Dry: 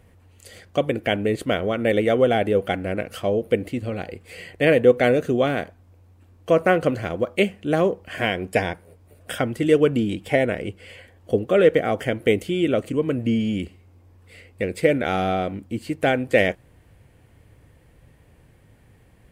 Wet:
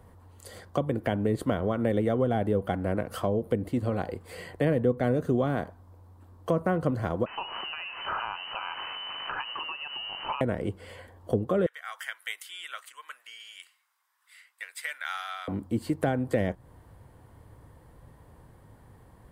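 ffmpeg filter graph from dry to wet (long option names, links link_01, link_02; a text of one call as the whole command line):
ffmpeg -i in.wav -filter_complex "[0:a]asettb=1/sr,asplit=3[link_01][link_02][link_03];[link_01]atrim=end=7.264[link_04];[link_02]atrim=start=7.26:end=10.41,asetpts=PTS-STARTPTS,afade=type=in:duration=0.004:curve=qsin,afade=type=out:start_time=3.146:duration=0.004:curve=qsin,aeval=exprs='val(0)+0.5*0.0501*sgn(val(0))':channel_layout=same,acompressor=threshold=-28dB:ratio=5:attack=3.2:release=140:knee=1:detection=peak,lowpass=frequency=2600:width_type=q:width=0.5098,lowpass=frequency=2600:width_type=q:width=0.6013,lowpass=frequency=2600:width_type=q:width=0.9,lowpass=frequency=2600:width_type=q:width=2.563,afreqshift=-3100[link_05];[link_03]atrim=start=10.406[link_06];[link_04][link_05]acrossfade=duration=0.004:curve1=hsin:curve2=qsin[link_07];[link_07][link_06]acrossfade=duration=0.004:curve1=qsin:curve2=hsin,asettb=1/sr,asplit=3[link_08][link_09][link_10];[link_08]atrim=end=11.664[link_11];[link_09]atrim=start=11.66:end=15.48,asetpts=PTS-STARTPTS,afade=type=in:duration=0.004:curve=qsin,afade=type=out:start_time=3.816:duration=0.004:curve=qsin,highpass=frequency=1500:width=0.5412,highpass=frequency=1500:width=1.3066,bandreject=frequency=4400:width=17[link_12];[link_10]atrim=start=15.476[link_13];[link_11][link_12]acrossfade=duration=0.004:curve1=hsin:curve2=qsin[link_14];[link_14][link_13]acrossfade=duration=0.004:curve1=qsin:curve2=hsin,equalizer=frequency=1000:width_type=o:width=0.67:gain=9,equalizer=frequency=2500:width_type=o:width=0.67:gain=-11,equalizer=frequency=6300:width_type=o:width=0.67:gain=-4,acrossover=split=240[link_15][link_16];[link_16]acompressor=threshold=-27dB:ratio=5[link_17];[link_15][link_17]amix=inputs=2:normalize=0" out.wav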